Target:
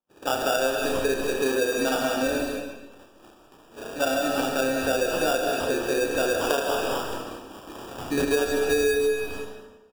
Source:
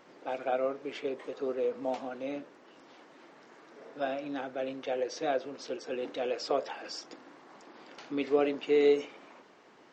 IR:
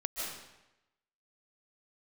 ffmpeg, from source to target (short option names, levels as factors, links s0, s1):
-filter_complex "[0:a]acontrast=63,agate=range=0.00501:threshold=0.00501:ratio=16:detection=peak,acrusher=samples=21:mix=1:aa=0.000001,aecho=1:1:30|72|130.8|213.1|328.4:0.631|0.398|0.251|0.158|0.1,asplit=2[s0][s1];[1:a]atrim=start_sample=2205,lowshelf=f=160:g=5.5[s2];[s1][s2]afir=irnorm=-1:irlink=0,volume=0.708[s3];[s0][s3]amix=inputs=2:normalize=0,acompressor=threshold=0.1:ratio=10"